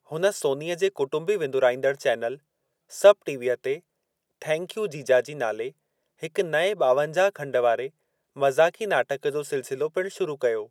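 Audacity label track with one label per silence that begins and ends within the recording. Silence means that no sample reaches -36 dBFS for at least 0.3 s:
2.350000	2.930000	silence
3.770000	4.420000	silence
5.690000	6.230000	silence
7.870000	8.370000	silence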